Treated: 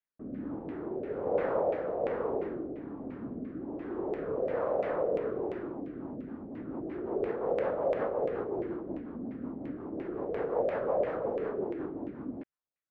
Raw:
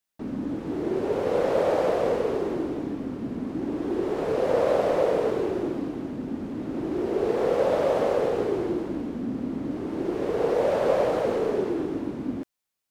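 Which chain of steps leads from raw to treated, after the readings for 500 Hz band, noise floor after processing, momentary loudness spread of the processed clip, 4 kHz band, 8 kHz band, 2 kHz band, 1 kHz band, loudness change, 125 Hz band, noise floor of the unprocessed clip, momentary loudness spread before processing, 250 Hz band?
-7.5 dB, -84 dBFS, 10 LU, under -15 dB, no reading, -8.0 dB, -7.5 dB, -8.0 dB, -9.0 dB, -74 dBFS, 9 LU, -9.0 dB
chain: rotary cabinet horn 1.2 Hz, later 5.5 Hz, at 5.64 s; LFO low-pass saw down 2.9 Hz 620–2300 Hz; trim -8 dB

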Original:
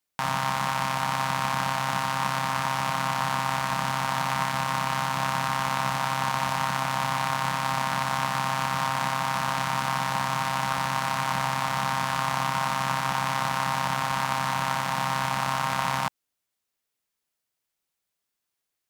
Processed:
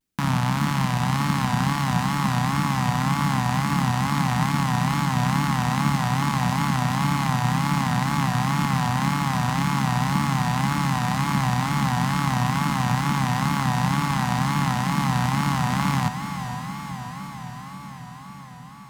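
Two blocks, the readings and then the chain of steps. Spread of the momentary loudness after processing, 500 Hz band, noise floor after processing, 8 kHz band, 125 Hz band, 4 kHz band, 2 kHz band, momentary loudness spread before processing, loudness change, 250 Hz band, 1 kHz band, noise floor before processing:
10 LU, -2.5 dB, -39 dBFS, +1.5 dB, +12.5 dB, +0.5 dB, 0.0 dB, 0 LU, +3.5 dB, +13.5 dB, +0.5 dB, -83 dBFS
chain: resonant low shelf 370 Hz +11.5 dB, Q 1.5; echo that smears into a reverb 481 ms, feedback 73%, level -9 dB; wow and flutter 130 cents

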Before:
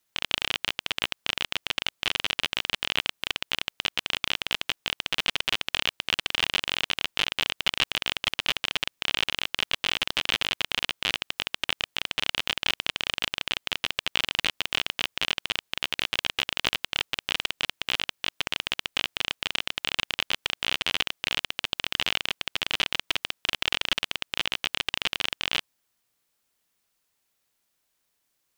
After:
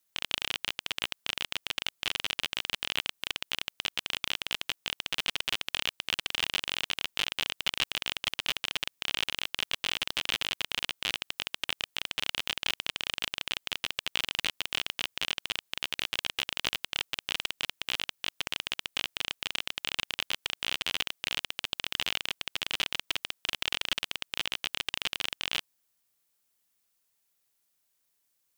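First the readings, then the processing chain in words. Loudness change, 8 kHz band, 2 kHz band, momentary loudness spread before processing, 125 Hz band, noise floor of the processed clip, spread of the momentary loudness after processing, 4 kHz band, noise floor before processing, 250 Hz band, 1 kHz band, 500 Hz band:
-4.5 dB, -1.5 dB, -5.0 dB, 3 LU, -6.0 dB, -76 dBFS, 3 LU, -4.5 dB, -76 dBFS, -6.0 dB, -6.0 dB, -6.0 dB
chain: treble shelf 6 kHz +8 dB; trim -6 dB

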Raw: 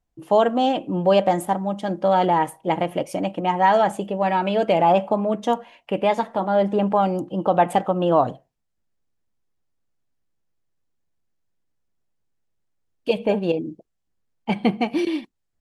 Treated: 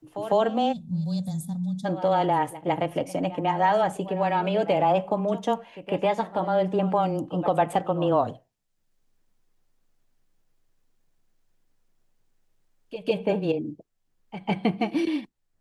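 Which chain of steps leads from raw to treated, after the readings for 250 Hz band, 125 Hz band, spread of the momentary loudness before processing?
-3.5 dB, -1.0 dB, 9 LU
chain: frequency shift -13 Hz; reverse echo 152 ms -17 dB; time-frequency box 0.73–1.85 s, 250–3400 Hz -28 dB; three bands compressed up and down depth 40%; trim -4 dB

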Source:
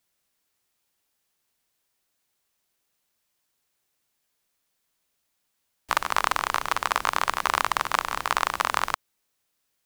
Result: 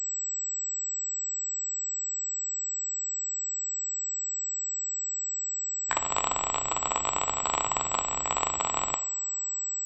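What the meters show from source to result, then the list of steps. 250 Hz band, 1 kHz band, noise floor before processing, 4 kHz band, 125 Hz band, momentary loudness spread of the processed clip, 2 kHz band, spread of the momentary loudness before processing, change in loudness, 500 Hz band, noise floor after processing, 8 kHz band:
+0.5 dB, -5.0 dB, -76 dBFS, -4.0 dB, +1.0 dB, 2 LU, -9.5 dB, 4 LU, -3.0 dB, -1.0 dB, -33 dBFS, +15.5 dB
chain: touch-sensitive flanger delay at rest 11.5 ms, full sweep at -25 dBFS; two-slope reverb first 0.53 s, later 4.5 s, from -21 dB, DRR 9.5 dB; class-D stage that switches slowly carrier 7.8 kHz

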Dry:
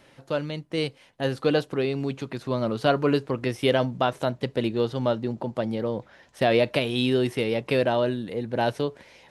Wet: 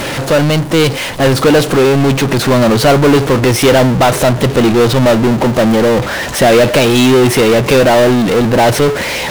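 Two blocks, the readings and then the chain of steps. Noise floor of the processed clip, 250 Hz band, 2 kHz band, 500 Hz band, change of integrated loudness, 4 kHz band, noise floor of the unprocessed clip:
-20 dBFS, +16.5 dB, +17.0 dB, +15.0 dB, +16.0 dB, +16.0 dB, -57 dBFS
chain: power-law waveshaper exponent 0.35; trim +6 dB

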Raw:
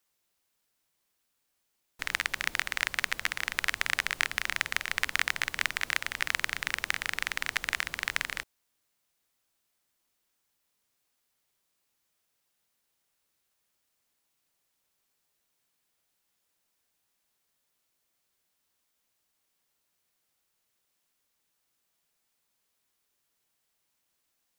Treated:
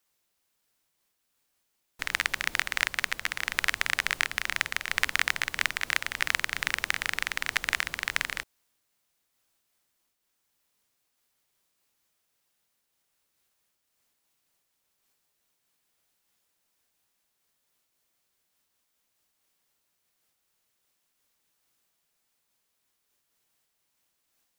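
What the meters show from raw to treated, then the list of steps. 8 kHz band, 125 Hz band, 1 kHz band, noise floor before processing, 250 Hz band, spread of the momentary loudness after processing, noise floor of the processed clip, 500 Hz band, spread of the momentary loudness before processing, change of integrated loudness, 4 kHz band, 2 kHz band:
+2.0 dB, +2.0 dB, +2.0 dB, -78 dBFS, +2.0 dB, 3 LU, -78 dBFS, +2.0 dB, 3 LU, +2.0 dB, +2.0 dB, +2.0 dB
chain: random flutter of the level, depth 60%; trim +5 dB

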